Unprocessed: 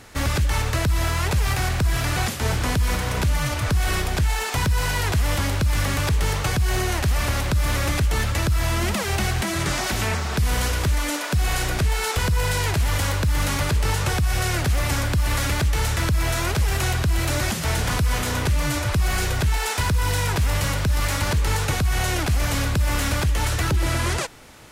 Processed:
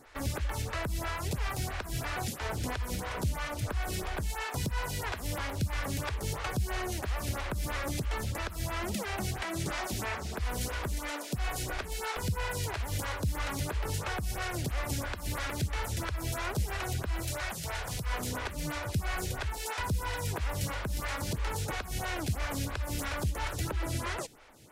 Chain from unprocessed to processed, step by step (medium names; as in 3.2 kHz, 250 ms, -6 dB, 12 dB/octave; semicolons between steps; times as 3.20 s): 17.22–18.07 s: peaking EQ 260 Hz -10.5 dB 1.3 oct; lamp-driven phase shifter 3 Hz; trim -7 dB